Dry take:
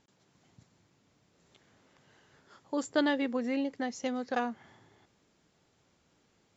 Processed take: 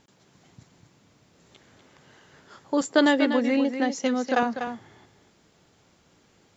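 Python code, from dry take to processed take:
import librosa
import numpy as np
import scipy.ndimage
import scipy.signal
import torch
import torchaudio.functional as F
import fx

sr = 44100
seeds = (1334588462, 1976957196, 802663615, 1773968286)

y = fx.highpass(x, sr, hz=160.0, slope=24, at=(2.81, 4.43))
y = y + 10.0 ** (-8.5 / 20.0) * np.pad(y, (int(245 * sr / 1000.0), 0))[:len(y)]
y = y * librosa.db_to_amplitude(8.5)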